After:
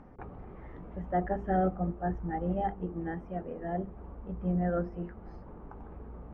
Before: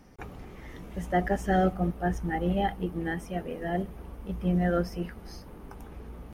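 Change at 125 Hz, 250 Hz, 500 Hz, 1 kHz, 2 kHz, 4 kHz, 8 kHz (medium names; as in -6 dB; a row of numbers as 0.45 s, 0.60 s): -4.0 dB, -4.0 dB, -3.5 dB, -3.0 dB, -10.0 dB, under -20 dB, under -30 dB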